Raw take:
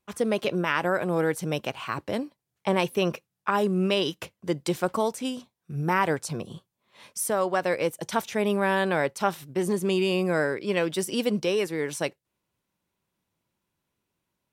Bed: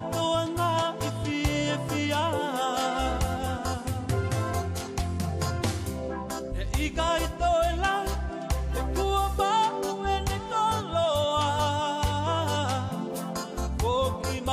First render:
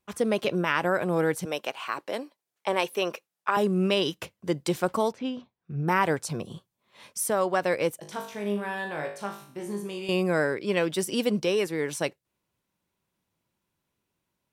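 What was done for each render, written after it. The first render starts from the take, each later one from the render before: 1.45–3.57 HPF 400 Hz; 5.12–5.88 air absorption 250 m; 8–10.09 resonator 51 Hz, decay 0.51 s, mix 90%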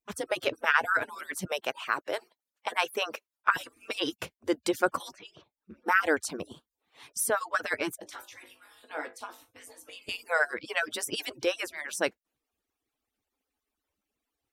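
median-filter separation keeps percussive; dynamic EQ 1500 Hz, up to +8 dB, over -47 dBFS, Q 3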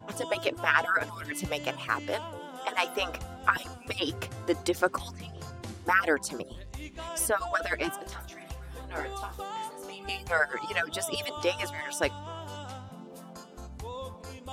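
add bed -13.5 dB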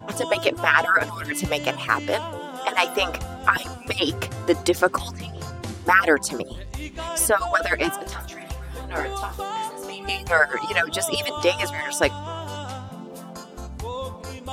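gain +8 dB; limiter -3 dBFS, peak gain reduction 3 dB

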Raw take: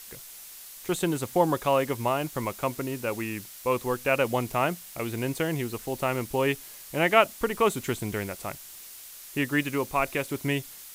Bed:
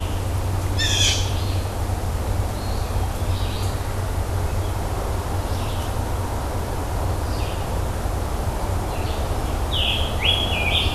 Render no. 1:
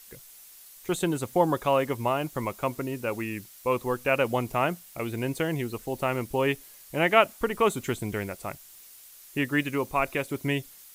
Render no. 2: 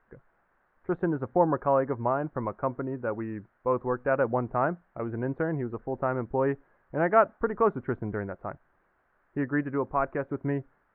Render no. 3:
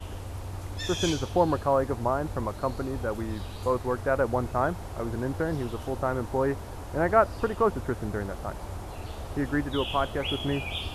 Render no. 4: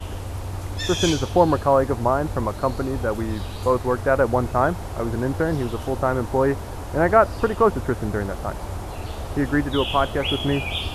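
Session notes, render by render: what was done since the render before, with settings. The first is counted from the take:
denoiser 7 dB, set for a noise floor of -45 dBFS
Chebyshev low-pass 1600 Hz, order 4
add bed -13.5 dB
gain +6.5 dB; limiter -3 dBFS, peak gain reduction 2 dB

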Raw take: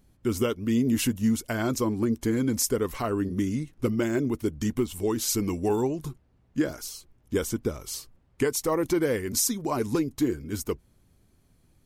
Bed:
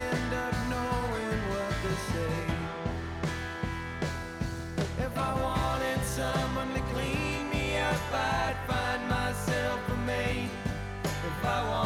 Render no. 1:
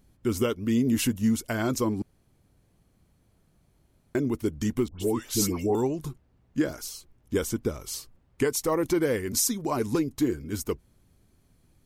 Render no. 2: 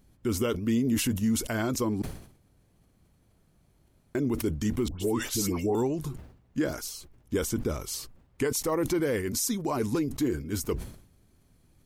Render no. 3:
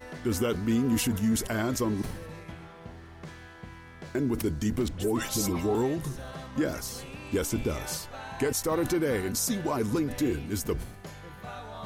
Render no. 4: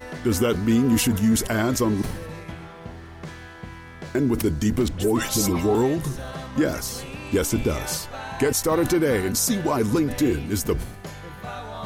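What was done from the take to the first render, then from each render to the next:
2.02–4.15 room tone; 4.88–5.75 dispersion highs, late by 0.12 s, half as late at 1300 Hz
limiter -19 dBFS, peak gain reduction 7 dB; sustainer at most 93 dB/s
add bed -11.5 dB
gain +6.5 dB

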